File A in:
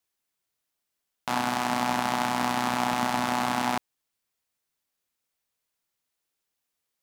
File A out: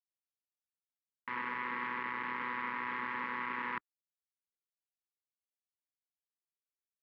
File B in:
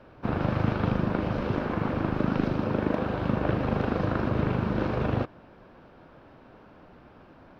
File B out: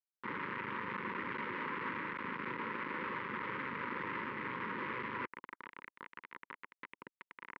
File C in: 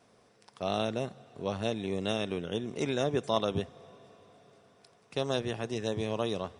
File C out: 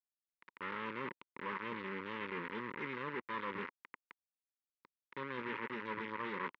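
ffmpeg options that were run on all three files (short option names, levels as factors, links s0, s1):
-af "areverse,acompressor=threshold=0.02:ratio=12,areverse,aeval=exprs='(mod(11.9*val(0)+1,2)-1)/11.9':c=same,aeval=exprs='(tanh(28.2*val(0)+0.65)-tanh(0.65))/28.2':c=same,acrusher=bits=5:dc=4:mix=0:aa=0.000001,asuperstop=centerf=700:order=4:qfactor=1.4,highpass=280,equalizer=f=310:t=q:w=4:g=-4,equalizer=f=450:t=q:w=4:g=-4,equalizer=f=970:t=q:w=4:g=8,equalizer=f=2000:t=q:w=4:g=7,lowpass=f=2400:w=0.5412,lowpass=f=2400:w=1.3066,volume=3.98" -ar 48000 -c:a libvorbis -b:a 192k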